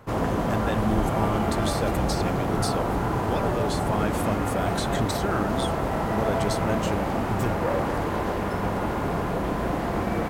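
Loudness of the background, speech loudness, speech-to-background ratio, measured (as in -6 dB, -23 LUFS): -26.5 LUFS, -31.5 LUFS, -5.0 dB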